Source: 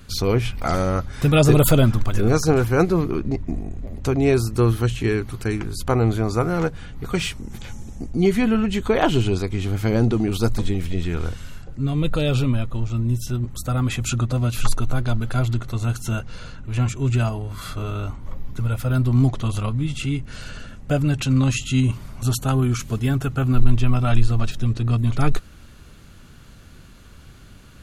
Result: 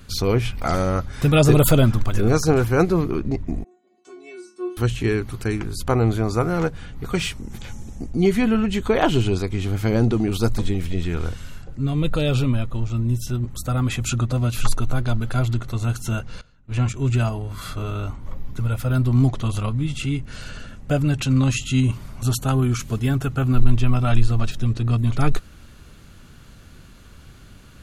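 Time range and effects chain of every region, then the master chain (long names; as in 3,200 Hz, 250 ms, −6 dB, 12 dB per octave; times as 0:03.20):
0:03.64–0:04.77: Chebyshev band-pass filter 200–9,000 Hz, order 4 + stiff-string resonator 360 Hz, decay 0.4 s, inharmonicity 0.002
0:16.41–0:16.94: low-pass filter 9,100 Hz + noise gate −28 dBFS, range −20 dB
whole clip: no processing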